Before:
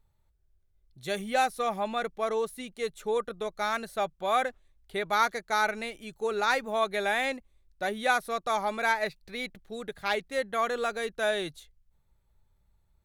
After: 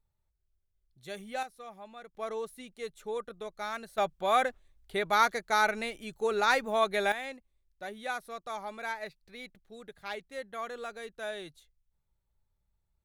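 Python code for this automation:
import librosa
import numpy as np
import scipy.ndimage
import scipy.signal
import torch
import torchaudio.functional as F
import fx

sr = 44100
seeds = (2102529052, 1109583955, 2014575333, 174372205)

y = fx.gain(x, sr, db=fx.steps((0.0, -9.5), (1.43, -17.0), (2.15, -7.0), (3.98, 0.5), (7.12, -10.0)))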